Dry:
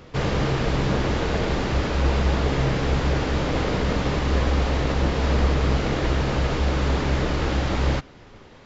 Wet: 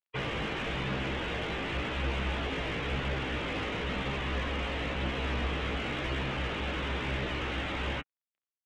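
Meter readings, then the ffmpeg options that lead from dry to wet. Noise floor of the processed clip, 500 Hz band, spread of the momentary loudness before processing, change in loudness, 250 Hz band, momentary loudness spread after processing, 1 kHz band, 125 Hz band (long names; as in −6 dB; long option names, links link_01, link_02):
below −85 dBFS, −11.0 dB, 2 LU, −10.0 dB, −11.0 dB, 1 LU, −8.5 dB, −13.5 dB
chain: -filter_complex "[0:a]flanger=delay=15:depth=3.6:speed=0.97,acrusher=bits=5:mix=0:aa=0.5,equalizer=frequency=2900:width_type=o:width=1.8:gain=13,acrossover=split=3200[link_01][link_02];[link_02]acompressor=threshold=-39dB:ratio=4:attack=1:release=60[link_03];[link_01][link_03]amix=inputs=2:normalize=0,afftdn=noise_reduction=33:noise_floor=-33,asplit=2[link_04][link_05];[link_05]highpass=frequency=720:poles=1,volume=18dB,asoftclip=type=tanh:threshold=-9.5dB[link_06];[link_04][link_06]amix=inputs=2:normalize=0,lowpass=frequency=1300:poles=1,volume=-6dB,acrossover=split=300|3000[link_07][link_08][link_09];[link_08]acompressor=threshold=-32dB:ratio=2.5[link_10];[link_07][link_10][link_09]amix=inputs=3:normalize=0,volume=-7.5dB"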